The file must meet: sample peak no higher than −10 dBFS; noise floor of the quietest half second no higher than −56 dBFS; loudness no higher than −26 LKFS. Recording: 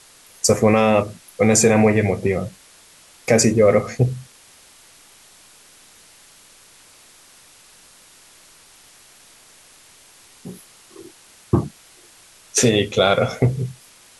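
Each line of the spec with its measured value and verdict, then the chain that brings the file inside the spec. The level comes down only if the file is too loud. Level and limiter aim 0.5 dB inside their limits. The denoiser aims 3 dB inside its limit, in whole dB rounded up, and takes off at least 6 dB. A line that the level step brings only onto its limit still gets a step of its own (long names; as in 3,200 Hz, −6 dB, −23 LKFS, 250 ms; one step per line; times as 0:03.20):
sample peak −4.0 dBFS: out of spec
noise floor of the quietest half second −49 dBFS: out of spec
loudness −18.0 LKFS: out of spec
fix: level −8.5 dB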